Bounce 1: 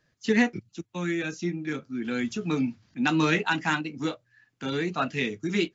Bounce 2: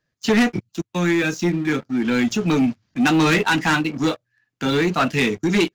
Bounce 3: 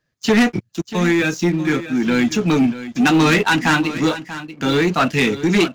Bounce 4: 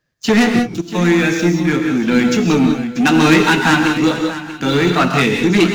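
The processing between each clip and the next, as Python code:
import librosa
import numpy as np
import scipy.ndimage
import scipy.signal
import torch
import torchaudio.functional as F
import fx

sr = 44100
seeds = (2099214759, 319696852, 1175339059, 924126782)

y1 = fx.leveller(x, sr, passes=3)
y2 = y1 + 10.0 ** (-13.5 / 20.0) * np.pad(y1, (int(638 * sr / 1000.0), 0))[:len(y1)]
y2 = F.gain(torch.from_numpy(y2), 2.5).numpy()
y3 = fx.rev_gated(y2, sr, seeds[0], gate_ms=210, shape='rising', drr_db=4.0)
y3 = F.gain(torch.from_numpy(y3), 1.5).numpy()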